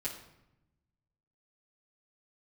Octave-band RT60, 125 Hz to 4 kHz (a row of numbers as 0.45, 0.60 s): 1.7, 1.3, 0.90, 0.85, 0.75, 0.60 s